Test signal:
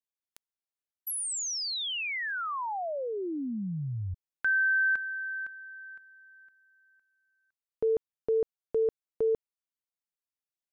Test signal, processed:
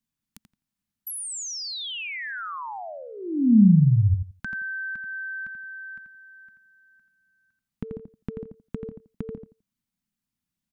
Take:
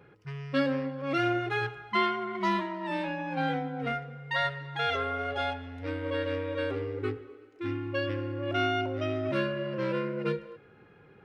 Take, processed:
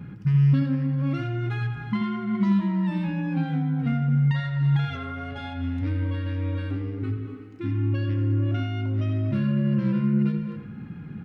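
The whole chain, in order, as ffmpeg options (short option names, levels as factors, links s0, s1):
-filter_complex "[0:a]acompressor=threshold=0.0126:ratio=6:attack=3:release=168:knee=1:detection=rms,lowshelf=f=310:t=q:w=3:g=12.5,asplit=2[s0][s1];[s1]adelay=85,lowpass=f=2900:p=1,volume=0.473,asplit=2[s2][s3];[s3]adelay=85,lowpass=f=2900:p=1,volume=0.18,asplit=2[s4][s5];[s5]adelay=85,lowpass=f=2900:p=1,volume=0.18[s6];[s0][s2][s4][s6]amix=inputs=4:normalize=0,volume=2"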